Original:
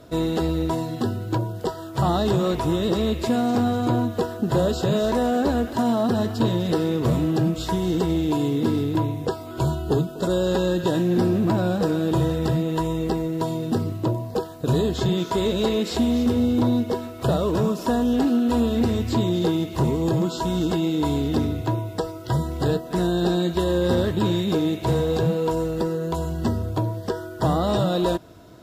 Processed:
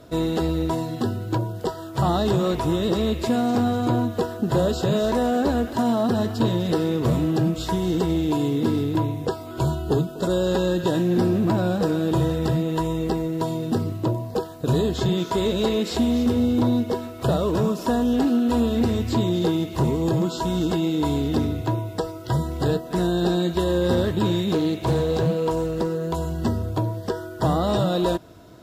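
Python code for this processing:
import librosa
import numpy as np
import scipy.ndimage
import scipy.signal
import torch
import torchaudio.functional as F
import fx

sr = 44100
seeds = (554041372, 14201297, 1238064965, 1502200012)

y = fx.doppler_dist(x, sr, depth_ms=0.21, at=(24.52, 26.11))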